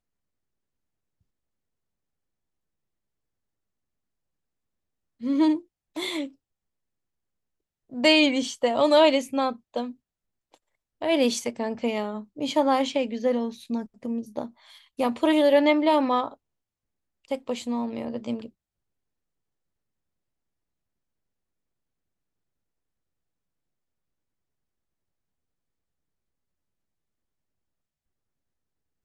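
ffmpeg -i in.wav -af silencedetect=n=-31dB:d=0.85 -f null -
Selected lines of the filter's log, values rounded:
silence_start: 0.00
silence_end: 5.23 | silence_duration: 5.23
silence_start: 6.26
silence_end: 7.93 | silence_duration: 1.68
silence_start: 9.90
silence_end: 11.02 | silence_duration: 1.12
silence_start: 16.28
silence_end: 17.31 | silence_duration: 1.04
silence_start: 18.46
silence_end: 29.05 | silence_duration: 10.59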